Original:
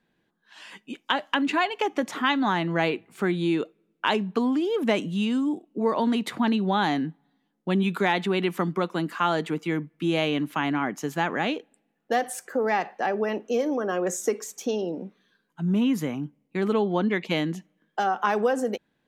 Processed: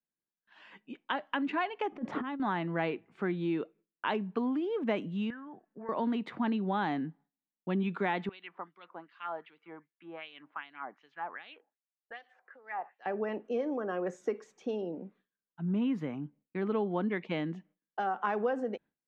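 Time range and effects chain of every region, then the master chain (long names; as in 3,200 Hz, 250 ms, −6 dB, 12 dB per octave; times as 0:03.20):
0:01.92–0:02.40: tilt shelving filter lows +7 dB, about 880 Hz + compressor whose output falls as the input rises −26 dBFS, ratio −0.5
0:05.30–0:05.89: low-pass with resonance 1,700 Hz, resonance Q 11 + parametric band 310 Hz −14.5 dB 0.83 octaves + downward compressor 3 to 1, threshold −35 dBFS
0:08.29–0:13.06: auto-filter band-pass sine 2.6 Hz 800–4,400 Hz + high-frequency loss of the air 86 metres
whole clip: noise gate with hold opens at −53 dBFS; low-pass filter 2,400 Hz 12 dB per octave; level −7.5 dB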